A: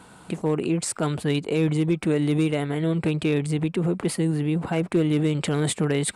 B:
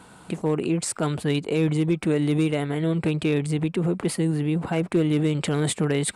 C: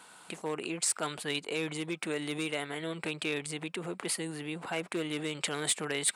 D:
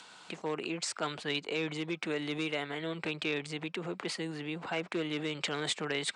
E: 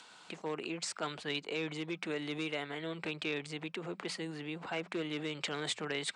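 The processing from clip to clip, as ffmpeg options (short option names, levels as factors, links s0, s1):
-af anull
-af "highpass=f=1500:p=1,asoftclip=type=hard:threshold=0.119"
-filter_complex "[0:a]lowpass=f=6300:w=0.5412,lowpass=f=6300:w=1.3066,acrossover=split=160|1600|2400[s0][s1][s2][s3];[s3]acompressor=mode=upward:threshold=0.00316:ratio=2.5[s4];[s0][s1][s2][s4]amix=inputs=4:normalize=0"
-af "bandreject=f=60:t=h:w=6,bandreject=f=120:t=h:w=6,bandreject=f=180:t=h:w=6,volume=0.708"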